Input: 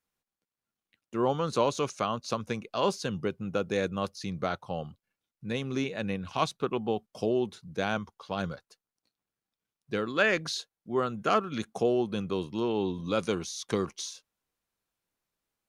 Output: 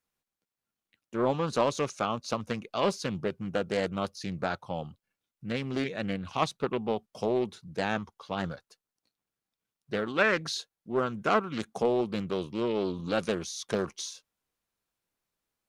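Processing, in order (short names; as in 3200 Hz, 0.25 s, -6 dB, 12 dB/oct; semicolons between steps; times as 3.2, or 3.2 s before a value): Doppler distortion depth 0.43 ms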